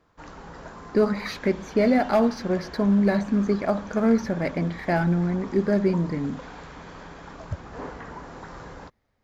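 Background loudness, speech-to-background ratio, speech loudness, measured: −41.5 LKFS, 17.5 dB, −24.0 LKFS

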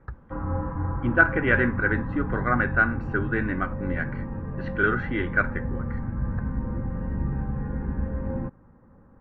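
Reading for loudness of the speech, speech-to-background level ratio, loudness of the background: −25.0 LKFS, 6.5 dB, −31.5 LKFS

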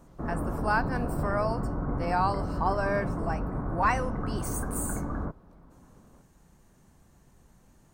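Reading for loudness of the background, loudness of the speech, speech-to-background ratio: −33.5 LKFS, −31.5 LKFS, 2.0 dB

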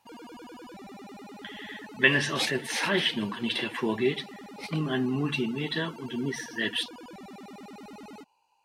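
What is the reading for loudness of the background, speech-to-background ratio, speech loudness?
−45.5 LKFS, 17.0 dB, −28.5 LKFS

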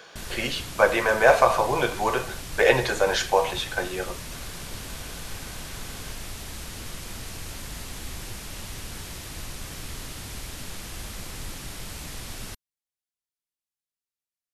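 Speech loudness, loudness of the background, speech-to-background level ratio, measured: −23.0 LKFS, −37.0 LKFS, 14.0 dB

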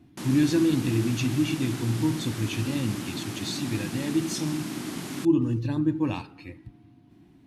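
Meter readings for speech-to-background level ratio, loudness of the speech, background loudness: 8.0 dB, −27.0 LKFS, −35.0 LKFS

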